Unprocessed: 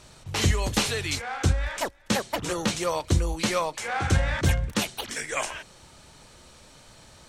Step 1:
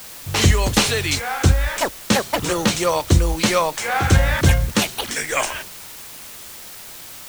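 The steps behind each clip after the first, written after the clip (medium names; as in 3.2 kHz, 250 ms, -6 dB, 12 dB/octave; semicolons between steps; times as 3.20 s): expander -42 dBFS; in parallel at -5.5 dB: word length cut 6-bit, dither triangular; on the sum: trim +4 dB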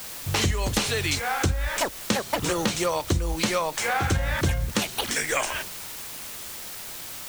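compression 4:1, threshold -22 dBFS, peak gain reduction 11.5 dB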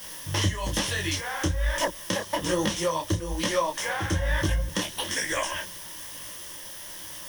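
rippled EQ curve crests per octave 1.2, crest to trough 10 dB; detune thickener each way 39 cents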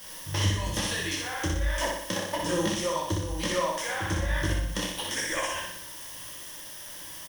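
feedback delay 61 ms, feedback 54%, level -3 dB; trim -4 dB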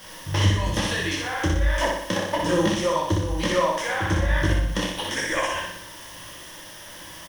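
treble shelf 5.3 kHz -11 dB; trim +6.5 dB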